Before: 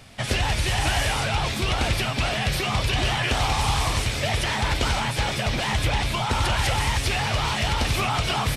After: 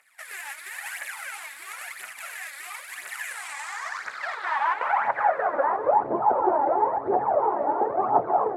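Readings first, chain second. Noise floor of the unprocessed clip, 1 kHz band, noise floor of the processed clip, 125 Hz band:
-29 dBFS, +3.5 dB, -43 dBFS, under -25 dB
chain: median filter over 15 samples; phaser 0.98 Hz, delay 3.7 ms, feedback 65%; low-pass sweep 11000 Hz -> 840 Hz, 3.24–6.08; HPF 69 Hz; low shelf 89 Hz -11.5 dB; thinning echo 0.301 s, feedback 60%, level -21 dB; high-pass sweep 2300 Hz -> 380 Hz, 3.44–6.07; band shelf 3800 Hz -10 dB; gain -2.5 dB

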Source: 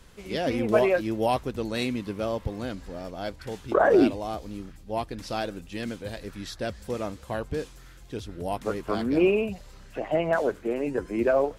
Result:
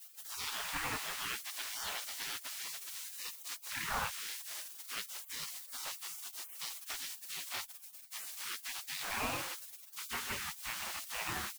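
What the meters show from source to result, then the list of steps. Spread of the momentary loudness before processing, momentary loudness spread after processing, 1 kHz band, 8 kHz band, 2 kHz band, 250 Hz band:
16 LU, 7 LU, -12.0 dB, +9.0 dB, -6.0 dB, -26.5 dB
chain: speakerphone echo 80 ms, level -23 dB; treble ducked by the level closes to 1200 Hz, closed at -18 dBFS; in parallel at -4 dB: soft clip -18 dBFS, distortion -14 dB; on the sum: added noise pink -41 dBFS; spectral gate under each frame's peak -30 dB weak; gain +3 dB

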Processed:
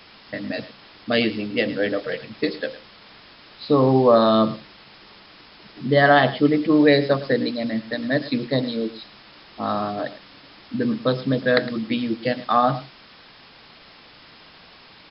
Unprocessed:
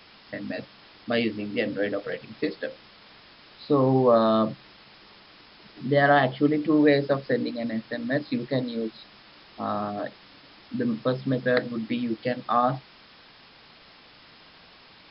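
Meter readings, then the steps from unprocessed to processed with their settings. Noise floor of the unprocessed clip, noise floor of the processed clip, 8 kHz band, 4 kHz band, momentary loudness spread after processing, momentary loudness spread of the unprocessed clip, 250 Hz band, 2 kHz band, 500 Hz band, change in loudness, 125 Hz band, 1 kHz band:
-52 dBFS, -48 dBFS, n/a, +8.0 dB, 16 LU, 16 LU, +4.0 dB, +5.0 dB, +4.0 dB, +4.5 dB, +4.0 dB, +4.5 dB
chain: dynamic EQ 4300 Hz, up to +5 dB, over -47 dBFS, Q 0.97; echo 0.109 s -16 dB; gain +4 dB

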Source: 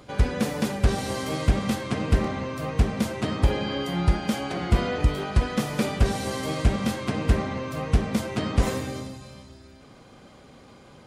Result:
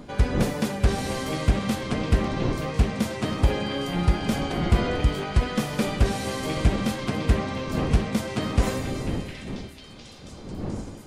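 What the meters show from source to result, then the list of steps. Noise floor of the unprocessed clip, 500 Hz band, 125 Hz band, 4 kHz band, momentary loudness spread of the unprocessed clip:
-50 dBFS, +0.5 dB, +0.5 dB, +1.0 dB, 5 LU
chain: wind noise 280 Hz -34 dBFS; delay with a stepping band-pass 0.707 s, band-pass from 2500 Hz, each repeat 0.7 oct, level -5 dB

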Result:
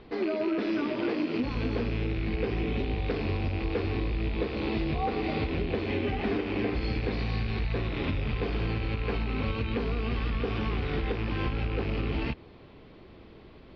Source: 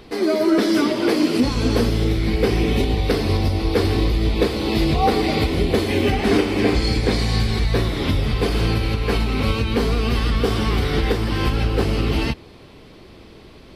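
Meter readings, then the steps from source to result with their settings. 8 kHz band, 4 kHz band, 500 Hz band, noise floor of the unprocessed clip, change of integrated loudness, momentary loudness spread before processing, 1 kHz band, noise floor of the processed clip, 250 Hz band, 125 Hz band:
under -30 dB, -14.5 dB, -11.0 dB, -44 dBFS, -10.5 dB, 3 LU, -11.0 dB, -51 dBFS, -10.5 dB, -10.0 dB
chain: rattling part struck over -28 dBFS, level -17 dBFS; Bessel low-pass 2800 Hz, order 8; compressor, threshold -19 dBFS, peak gain reduction 7 dB; gain -6.5 dB

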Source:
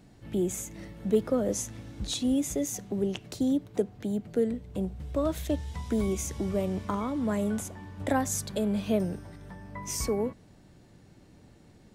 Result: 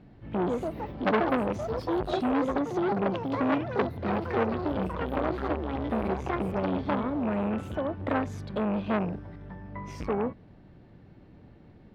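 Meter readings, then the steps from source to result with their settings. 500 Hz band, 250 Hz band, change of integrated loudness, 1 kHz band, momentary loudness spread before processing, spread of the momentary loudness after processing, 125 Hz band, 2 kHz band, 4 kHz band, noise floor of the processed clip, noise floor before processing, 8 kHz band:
+1.5 dB, +0.5 dB, +1.0 dB, +8.0 dB, 10 LU, 7 LU, +1.0 dB, +7.5 dB, -4.5 dB, -53 dBFS, -56 dBFS, under -20 dB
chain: rattling part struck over -29 dBFS, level -29 dBFS; echoes that change speed 0.218 s, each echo +5 st, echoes 3; air absorption 360 m; core saturation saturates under 1400 Hz; gain +3.5 dB

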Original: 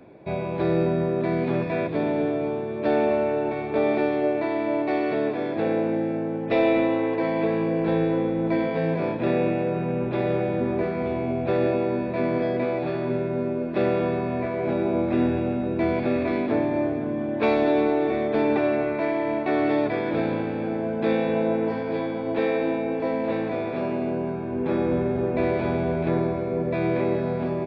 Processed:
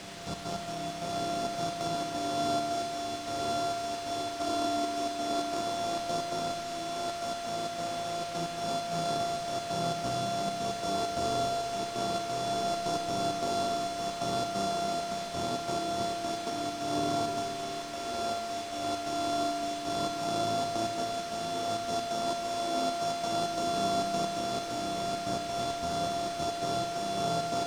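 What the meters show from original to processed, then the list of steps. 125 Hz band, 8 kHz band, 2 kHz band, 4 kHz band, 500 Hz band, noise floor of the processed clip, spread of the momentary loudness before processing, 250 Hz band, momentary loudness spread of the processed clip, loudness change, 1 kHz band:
-12.0 dB, n/a, -9.5 dB, +9.5 dB, -8.5 dB, -37 dBFS, 5 LU, -13.5 dB, 4 LU, -7.5 dB, -0.5 dB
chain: sample sorter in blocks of 64 samples; Chebyshev band-stop 1200–3800 Hz, order 2; high shelf 4100 Hz +9.5 dB; de-hum 85.65 Hz, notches 27; negative-ratio compressor -26 dBFS, ratio -0.5; on a send: reverse echo 0.353 s -12.5 dB; on the sum: flange 0.46 Hz, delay 9.5 ms, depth 10 ms, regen +68%; step gate "xxx.x.xx.x" 133 bpm; requantised 6-bit, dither triangular; air absorption 100 m; Schroeder reverb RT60 3.7 s, combs from 27 ms, DRR 4 dB; gain -4 dB

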